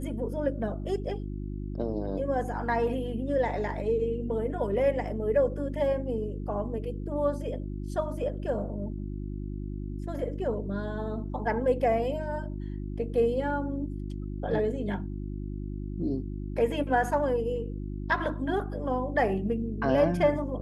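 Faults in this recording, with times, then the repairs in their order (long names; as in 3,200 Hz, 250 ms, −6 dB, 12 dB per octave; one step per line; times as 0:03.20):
mains hum 50 Hz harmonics 7 −35 dBFS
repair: hum removal 50 Hz, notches 7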